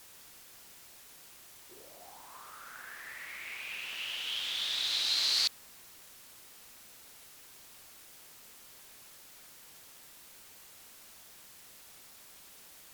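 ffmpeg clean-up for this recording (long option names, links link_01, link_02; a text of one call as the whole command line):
ffmpeg -i in.wav -af "afwtdn=0.002" out.wav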